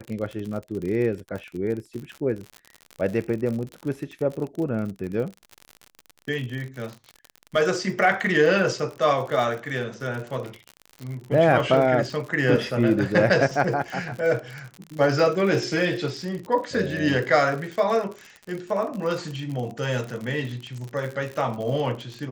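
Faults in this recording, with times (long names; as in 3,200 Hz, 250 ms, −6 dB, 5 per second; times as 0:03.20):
surface crackle 56 per second −30 dBFS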